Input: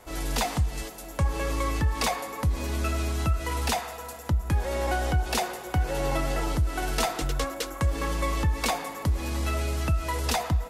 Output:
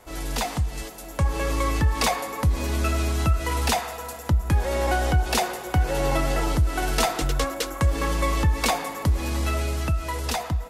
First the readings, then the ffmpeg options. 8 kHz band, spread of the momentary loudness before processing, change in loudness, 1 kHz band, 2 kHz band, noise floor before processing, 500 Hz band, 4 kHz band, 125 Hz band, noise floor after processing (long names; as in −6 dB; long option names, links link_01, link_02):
+3.5 dB, 4 LU, +3.5 dB, +3.5 dB, +3.5 dB, −40 dBFS, +3.5 dB, +3.5 dB, +3.5 dB, −38 dBFS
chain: -af "dynaudnorm=framelen=110:gausssize=21:maxgain=4dB"